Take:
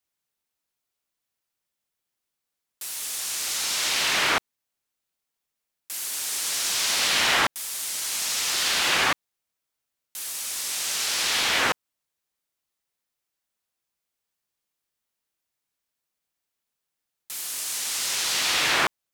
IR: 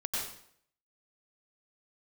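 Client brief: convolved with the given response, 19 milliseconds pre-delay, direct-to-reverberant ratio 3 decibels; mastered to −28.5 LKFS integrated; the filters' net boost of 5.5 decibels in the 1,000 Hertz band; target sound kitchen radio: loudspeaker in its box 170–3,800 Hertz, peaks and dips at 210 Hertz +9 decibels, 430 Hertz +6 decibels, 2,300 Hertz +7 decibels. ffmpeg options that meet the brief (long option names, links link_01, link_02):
-filter_complex "[0:a]equalizer=frequency=1000:width_type=o:gain=6.5,asplit=2[link_01][link_02];[1:a]atrim=start_sample=2205,adelay=19[link_03];[link_02][link_03]afir=irnorm=-1:irlink=0,volume=-7.5dB[link_04];[link_01][link_04]amix=inputs=2:normalize=0,highpass=170,equalizer=frequency=210:width_type=q:width=4:gain=9,equalizer=frequency=430:width_type=q:width=4:gain=6,equalizer=frequency=2300:width_type=q:width=4:gain=7,lowpass=frequency=3800:width=0.5412,lowpass=frequency=3800:width=1.3066,volume=-8.5dB"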